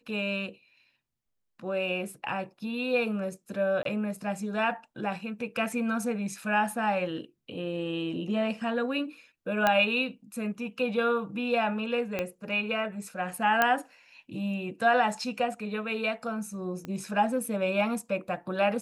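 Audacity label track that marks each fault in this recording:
3.830000	3.850000	gap 23 ms
9.670000	9.670000	pop -10 dBFS
12.190000	12.190000	pop -16 dBFS
13.620000	13.620000	pop -9 dBFS
16.850000	16.850000	pop -24 dBFS

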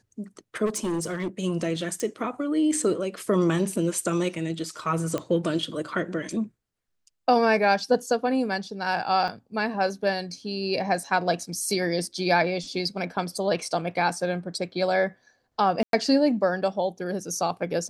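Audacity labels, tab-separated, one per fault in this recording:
0.650000	1.280000	clipped -23.5 dBFS
2.000000	2.000000	pop -18 dBFS
5.180000	5.180000	pop -15 dBFS
9.280000	9.290000	gap 5.1 ms
15.830000	15.930000	gap 0.102 s

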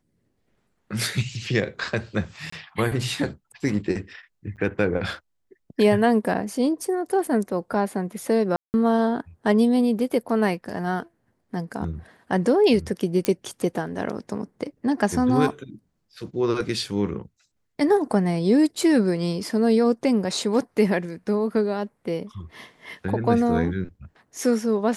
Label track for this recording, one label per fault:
2.500000	2.520000	gap 24 ms
4.560000	4.570000	gap 8.9 ms
8.560000	8.740000	gap 0.179 s
13.250000	13.250000	pop -8 dBFS

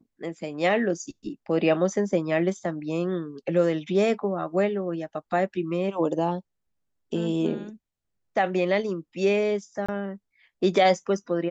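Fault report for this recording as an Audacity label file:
9.860000	9.880000	gap 25 ms

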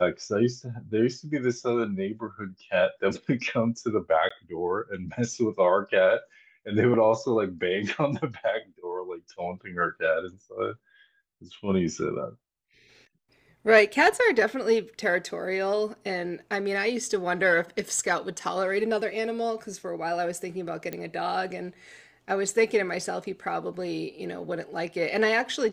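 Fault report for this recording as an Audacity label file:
4.290000	4.300000	gap 15 ms
20.930000	20.930000	pop -18 dBFS

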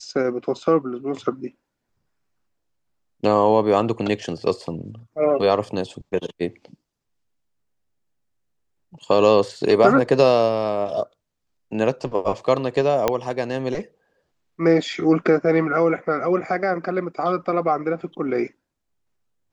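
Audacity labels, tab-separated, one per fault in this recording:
13.080000	13.080000	pop -5 dBFS

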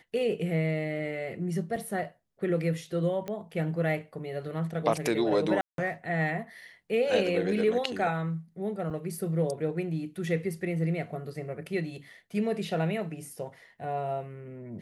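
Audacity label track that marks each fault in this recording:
1.760000	1.760000	gap 4.2 ms
3.280000	3.280000	pop -22 dBFS
5.610000	5.780000	gap 0.172 s
8.900000	8.910000	gap 6.2 ms

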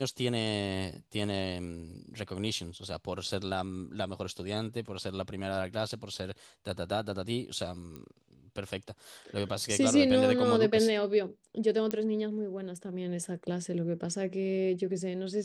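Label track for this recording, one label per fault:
7.960000	7.960000	pop -29 dBFS
11.910000	11.910000	pop -17 dBFS

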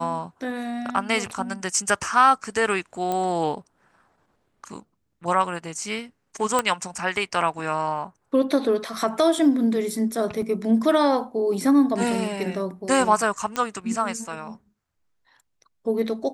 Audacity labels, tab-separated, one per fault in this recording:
3.120000	3.120000	pop -14 dBFS
6.590000	6.590000	pop -7 dBFS
10.420000	10.420000	gap 3.5 ms
13.560000	13.560000	pop -12 dBFS

